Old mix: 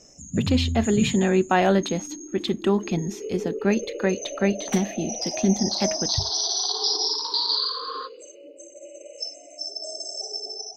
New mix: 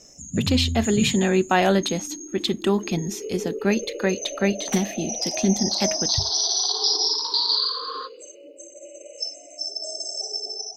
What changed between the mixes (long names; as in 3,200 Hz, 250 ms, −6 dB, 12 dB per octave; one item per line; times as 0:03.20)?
speech: add high-shelf EQ 3,400 Hz +6.5 dB
master: add high-shelf EQ 5,400 Hz +5.5 dB